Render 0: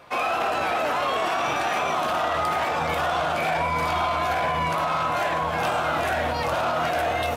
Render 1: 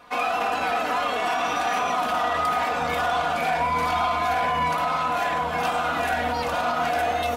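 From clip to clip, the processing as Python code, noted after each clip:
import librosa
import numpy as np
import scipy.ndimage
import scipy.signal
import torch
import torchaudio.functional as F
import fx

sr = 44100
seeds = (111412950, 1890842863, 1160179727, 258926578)

y = fx.notch(x, sr, hz=520.0, q=12.0)
y = y + 0.75 * np.pad(y, (int(4.1 * sr / 1000.0), 0))[:len(y)]
y = y * 10.0 ** (-2.0 / 20.0)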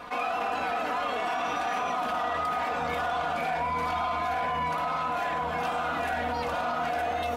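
y = fx.high_shelf(x, sr, hz=3800.0, db=-6.0)
y = fx.env_flatten(y, sr, amount_pct=50)
y = y * 10.0 ** (-6.0 / 20.0)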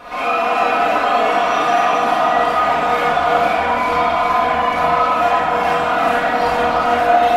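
y = x + 10.0 ** (-6.5 / 20.0) * np.pad(x, (int(333 * sr / 1000.0), 0))[:len(x)]
y = fx.rev_freeverb(y, sr, rt60_s=1.2, hf_ratio=0.55, predelay_ms=10, drr_db=-9.0)
y = y * 10.0 ** (3.0 / 20.0)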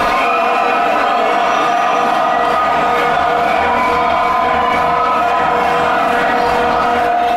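y = fx.env_flatten(x, sr, amount_pct=100)
y = y * 10.0 ** (-3.5 / 20.0)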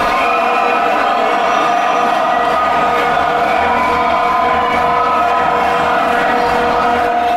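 y = x + 10.0 ** (-11.0 / 20.0) * np.pad(x, (int(207 * sr / 1000.0), 0))[:len(x)]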